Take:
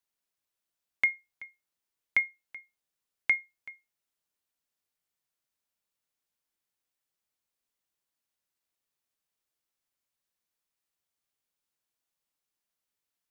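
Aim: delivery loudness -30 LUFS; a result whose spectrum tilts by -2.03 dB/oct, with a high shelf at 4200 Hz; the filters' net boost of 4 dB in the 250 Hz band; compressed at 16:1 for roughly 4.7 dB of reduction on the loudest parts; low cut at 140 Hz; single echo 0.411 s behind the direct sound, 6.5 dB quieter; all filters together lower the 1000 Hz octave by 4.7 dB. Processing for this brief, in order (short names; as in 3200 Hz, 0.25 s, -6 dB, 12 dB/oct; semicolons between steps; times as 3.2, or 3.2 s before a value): HPF 140 Hz; bell 250 Hz +6 dB; bell 1000 Hz -7.5 dB; high shelf 4200 Hz +8.5 dB; compressor 16:1, threshold -24 dBFS; echo 0.411 s -6.5 dB; gain +5 dB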